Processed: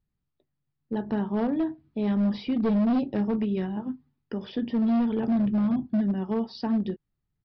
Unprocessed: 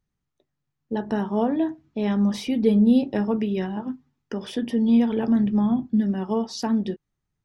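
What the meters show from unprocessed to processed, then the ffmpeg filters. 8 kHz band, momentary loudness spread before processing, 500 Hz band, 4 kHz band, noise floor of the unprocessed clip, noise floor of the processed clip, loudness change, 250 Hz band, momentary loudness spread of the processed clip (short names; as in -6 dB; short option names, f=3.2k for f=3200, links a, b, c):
n/a, 13 LU, -5.0 dB, -7.0 dB, -81 dBFS, -81 dBFS, -3.5 dB, -3.5 dB, 11 LU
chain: -af "lowshelf=f=320:g=6.5,aresample=11025,asoftclip=type=hard:threshold=-14.5dB,aresample=44100,volume=-6dB"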